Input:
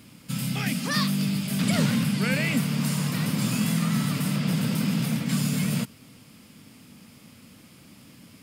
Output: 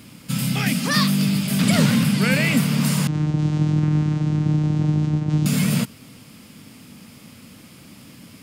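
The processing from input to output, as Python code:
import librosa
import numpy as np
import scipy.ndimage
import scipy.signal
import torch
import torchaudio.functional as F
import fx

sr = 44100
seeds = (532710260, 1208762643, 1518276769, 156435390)

y = fx.vocoder(x, sr, bands=4, carrier='saw', carrier_hz=152.0, at=(3.07, 5.46))
y = y * librosa.db_to_amplitude(6.0)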